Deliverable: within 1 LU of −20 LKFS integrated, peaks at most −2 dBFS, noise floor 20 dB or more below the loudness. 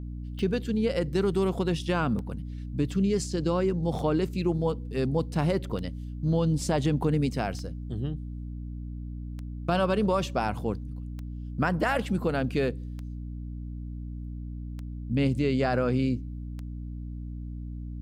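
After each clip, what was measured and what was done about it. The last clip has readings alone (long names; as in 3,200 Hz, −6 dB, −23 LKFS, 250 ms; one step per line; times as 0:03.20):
number of clicks 10; mains hum 60 Hz; hum harmonics up to 300 Hz; level of the hum −34 dBFS; integrated loudness −29.5 LKFS; sample peak −14.0 dBFS; target loudness −20.0 LKFS
→ click removal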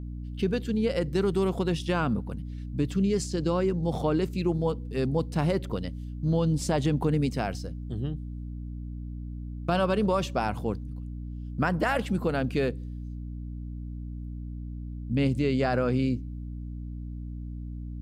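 number of clicks 0; mains hum 60 Hz; hum harmonics up to 300 Hz; level of the hum −34 dBFS
→ mains-hum notches 60/120/180/240/300 Hz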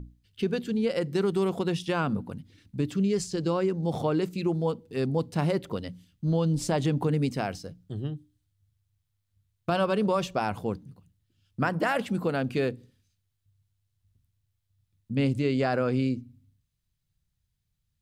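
mains hum none found; integrated loudness −28.5 LKFS; sample peak −14.0 dBFS; target loudness −20.0 LKFS
→ level +8.5 dB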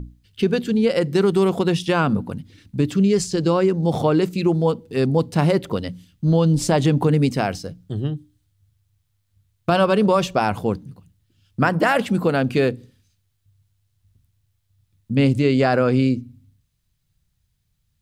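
integrated loudness −20.0 LKFS; sample peak −5.5 dBFS; background noise floor −70 dBFS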